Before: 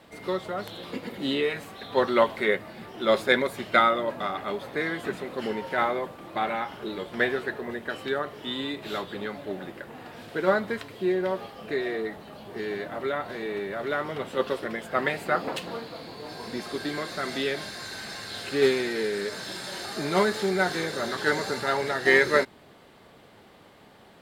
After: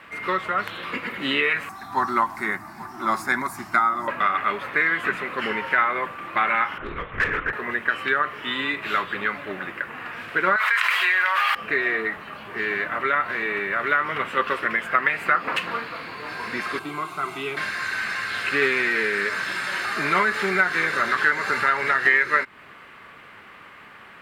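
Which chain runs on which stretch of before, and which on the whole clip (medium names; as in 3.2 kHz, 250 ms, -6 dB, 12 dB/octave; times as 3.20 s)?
1.69–4.08 s: FFT filter 340 Hz 0 dB, 490 Hz -22 dB, 770 Hz +5 dB, 1.2 kHz -5 dB, 3 kHz -20 dB, 5.3 kHz +6 dB + delay 832 ms -19 dB
6.78–7.53 s: treble shelf 2.7 kHz -10 dB + LPC vocoder at 8 kHz whisper + overload inside the chain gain 27.5 dB
10.56–11.55 s: Bessel high-pass 1.3 kHz, order 4 + level flattener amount 100%
16.79–17.57 s: peaking EQ 4.8 kHz -12 dB 0.84 oct + static phaser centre 350 Hz, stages 8
whole clip: high-order bell 1.7 kHz +14.5 dB; compression 4:1, threshold -17 dBFS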